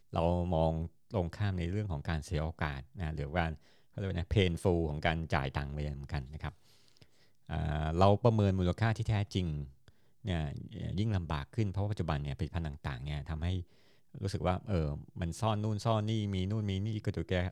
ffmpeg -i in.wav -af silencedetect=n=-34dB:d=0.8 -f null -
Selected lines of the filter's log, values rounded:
silence_start: 6.49
silence_end: 7.50 | silence_duration: 1.01